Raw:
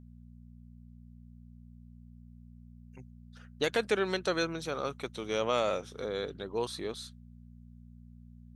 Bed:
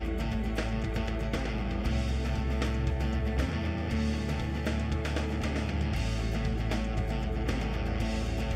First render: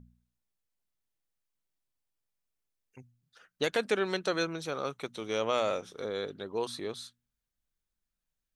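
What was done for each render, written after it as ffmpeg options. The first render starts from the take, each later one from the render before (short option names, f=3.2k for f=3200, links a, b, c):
-af "bandreject=f=60:t=h:w=4,bandreject=f=120:t=h:w=4,bandreject=f=180:t=h:w=4,bandreject=f=240:t=h:w=4"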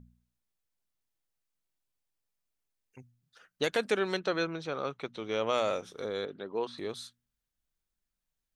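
-filter_complex "[0:a]asettb=1/sr,asplit=3[a][b][c];[a]atrim=end=4.204[d];[b]atrim=start=4.2:end=5.47,asetpts=PTS-STARTPTS,afade=t=in:d=0.004:c=qsin,afade=t=out:st=1.266:d=0.004:c=qsin,lowpass=4.1k[e];[c]atrim=start=5.466[f];[d][e]acrossfade=d=0.004:c1=hsin:c2=qsin[g];[g][f]acrossfade=d=0.004:c1=qsin:c2=hsin,asettb=1/sr,asplit=3[h][i][j];[h]atrim=end=6.254[k];[i]atrim=start=6.25:end=6.78,asetpts=PTS-STARTPTS,afade=t=in:d=0.004:c=qsin,afade=t=out:st=0.526:d=0.004:c=qsin,highpass=160,lowpass=3.1k[l];[j]atrim=start=6.776[m];[k][l]acrossfade=d=0.004:c1=hsin:c2=qsin[n];[n][m]acrossfade=d=0.004:c1=qsin:c2=hsin"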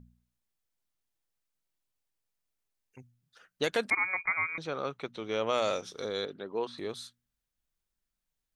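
-filter_complex "[0:a]asettb=1/sr,asplit=3[a][b][c];[a]atrim=end=3.904[d];[b]atrim=start=3.9:end=4.58,asetpts=PTS-STARTPTS,afade=t=in:d=0.004:c=qsin,afade=t=out:st=0.676:d=0.004:c=qsin,lowpass=f=2.2k:t=q:w=0.5098,lowpass=f=2.2k:t=q:w=0.6013,lowpass=f=2.2k:t=q:w=0.9,lowpass=f=2.2k:t=q:w=2.563,afreqshift=-2600[e];[c]atrim=start=4.576[f];[d][e]acrossfade=d=0.004:c1=hsin:c2=qsin[g];[g][f]acrossfade=d=0.004:c1=qsin:c2=hsin,asettb=1/sr,asplit=3[h][i][j];[h]atrim=end=5.624[k];[i]atrim=start=5.62:end=6.33,asetpts=PTS-STARTPTS,afade=t=in:d=0.004:c=qsin,afade=t=out:st=0.706:d=0.004:c=qsin,equalizer=f=5k:t=o:w=1.1:g=9[l];[j]atrim=start=6.326[m];[k][l]acrossfade=d=0.004:c1=hsin:c2=qsin[n];[n][m]acrossfade=d=0.004:c1=qsin:c2=hsin"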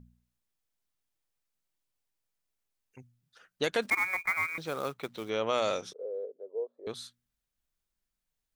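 -filter_complex "[0:a]asplit=3[a][b][c];[a]afade=t=out:st=3.81:d=0.02[d];[b]acrusher=bits=4:mode=log:mix=0:aa=0.000001,afade=t=in:st=3.81:d=0.02,afade=t=out:st=5.28:d=0.02[e];[c]afade=t=in:st=5.28:d=0.02[f];[d][e][f]amix=inputs=3:normalize=0,asettb=1/sr,asplit=3[g][h][i];[g]atrim=end=5.934[j];[h]atrim=start=5.93:end=6.87,asetpts=PTS-STARTPTS,afade=t=in:d=0.004:c=qsin,afade=t=out:st=0.936:d=0.004:c=qsin,asuperpass=centerf=510:order=4:qfactor=2.8[k];[i]atrim=start=6.866[l];[j][k]acrossfade=d=0.004:c1=hsin:c2=qsin[m];[m][l]acrossfade=d=0.004:c1=qsin:c2=hsin"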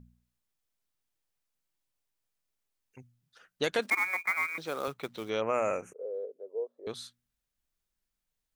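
-filter_complex "[0:a]asettb=1/sr,asplit=3[a][b][c];[a]atrim=end=3.794[d];[b]atrim=start=3.79:end=4.88,asetpts=PTS-STARTPTS,afade=t=in:d=0.004:c=qsin,afade=t=out:st=1.086:d=0.004:c=qsin,highpass=200[e];[c]atrim=start=4.876[f];[d][e]acrossfade=d=0.004:c1=hsin:c2=qsin[g];[g][f]acrossfade=d=0.004:c1=qsin:c2=hsin,asplit=3[h][i][j];[h]afade=t=out:st=5.4:d=0.02[k];[i]asuperstop=centerf=4200:order=12:qfactor=1.1,afade=t=in:st=5.4:d=0.02,afade=t=out:st=6.05:d=0.02[l];[j]afade=t=in:st=6.05:d=0.02[m];[k][l][m]amix=inputs=3:normalize=0"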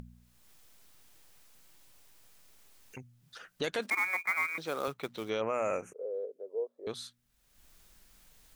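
-af "alimiter=limit=-21dB:level=0:latency=1:release=13,acompressor=mode=upward:threshold=-39dB:ratio=2.5"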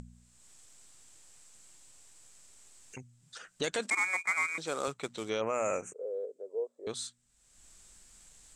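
-af "lowpass=f=7.8k:t=q:w=5.8"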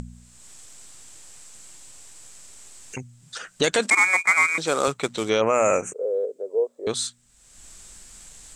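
-af "volume=12dB"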